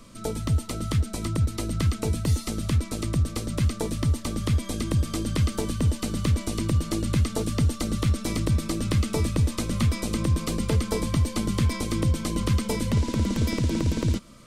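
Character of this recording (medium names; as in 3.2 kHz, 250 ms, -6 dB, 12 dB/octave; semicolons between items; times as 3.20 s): noise floor -39 dBFS; spectral tilt -6.0 dB/octave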